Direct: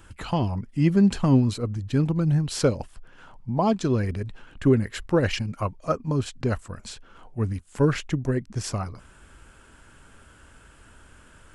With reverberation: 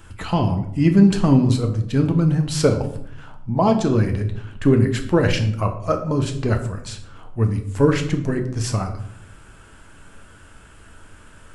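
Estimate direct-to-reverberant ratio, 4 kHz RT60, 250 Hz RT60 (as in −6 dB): 4.0 dB, 0.45 s, 1.1 s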